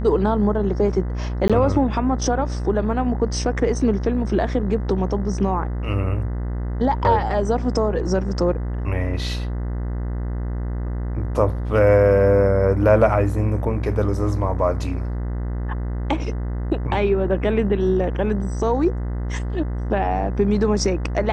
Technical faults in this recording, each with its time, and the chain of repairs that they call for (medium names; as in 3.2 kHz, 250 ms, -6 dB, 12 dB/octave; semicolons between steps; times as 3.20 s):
buzz 60 Hz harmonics 34 -25 dBFS
1.48–1.50 s: dropout 16 ms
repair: de-hum 60 Hz, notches 34; interpolate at 1.48 s, 16 ms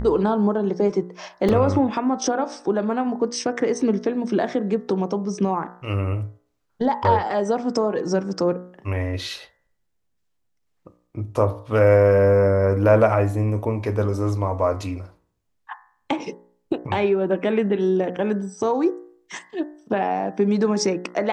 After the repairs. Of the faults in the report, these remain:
nothing left